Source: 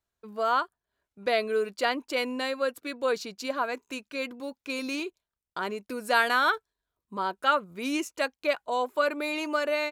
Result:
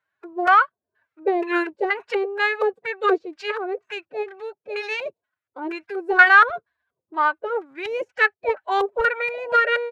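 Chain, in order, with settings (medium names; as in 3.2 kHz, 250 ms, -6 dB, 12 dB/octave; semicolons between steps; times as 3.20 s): high-pass 41 Hz; overload inside the chain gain 17.5 dB; LFO low-pass square 2.1 Hz 460–1700 Hz; tilt EQ +3.5 dB/octave; formant-preserving pitch shift +8 st; trim +6.5 dB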